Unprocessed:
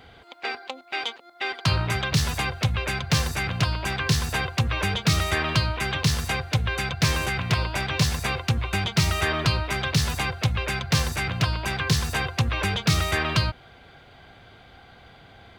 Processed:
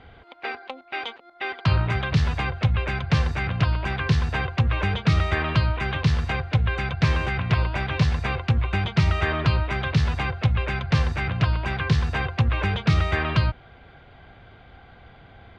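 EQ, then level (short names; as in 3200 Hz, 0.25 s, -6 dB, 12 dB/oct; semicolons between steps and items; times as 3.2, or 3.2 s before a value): LPF 2800 Hz 12 dB/oct; low shelf 84 Hz +8 dB; 0.0 dB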